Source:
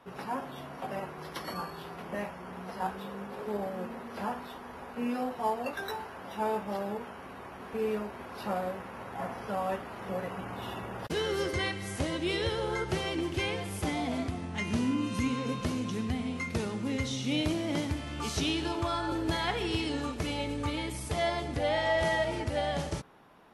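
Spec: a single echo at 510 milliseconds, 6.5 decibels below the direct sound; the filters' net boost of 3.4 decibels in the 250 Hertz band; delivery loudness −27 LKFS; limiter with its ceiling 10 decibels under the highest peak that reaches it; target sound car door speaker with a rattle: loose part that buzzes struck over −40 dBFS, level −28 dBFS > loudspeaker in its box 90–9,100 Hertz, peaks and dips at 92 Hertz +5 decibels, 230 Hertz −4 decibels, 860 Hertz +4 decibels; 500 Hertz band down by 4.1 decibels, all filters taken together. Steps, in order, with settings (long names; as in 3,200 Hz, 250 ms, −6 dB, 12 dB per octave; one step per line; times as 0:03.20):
parametric band 250 Hz +9 dB
parametric band 500 Hz −9 dB
brickwall limiter −24 dBFS
single-tap delay 510 ms −6.5 dB
loose part that buzzes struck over −40 dBFS, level −28 dBFS
loudspeaker in its box 90–9,100 Hz, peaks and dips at 92 Hz +5 dB, 230 Hz −4 dB, 860 Hz +4 dB
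level +6.5 dB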